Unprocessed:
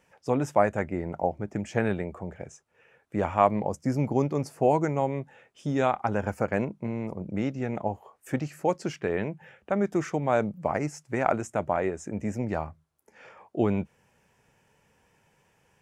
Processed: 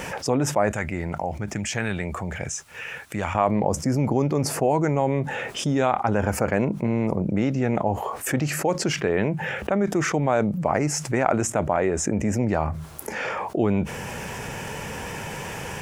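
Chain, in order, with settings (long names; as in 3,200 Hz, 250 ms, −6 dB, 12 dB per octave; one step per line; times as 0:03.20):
0:00.72–0:03.35: guitar amp tone stack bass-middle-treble 5-5-5
envelope flattener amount 70%
level −1.5 dB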